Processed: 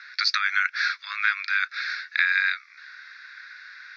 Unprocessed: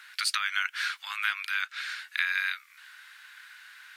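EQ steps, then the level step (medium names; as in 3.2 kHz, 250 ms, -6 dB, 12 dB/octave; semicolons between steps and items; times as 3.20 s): steep low-pass 5.6 kHz 48 dB/octave; static phaser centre 3 kHz, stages 6; +7.5 dB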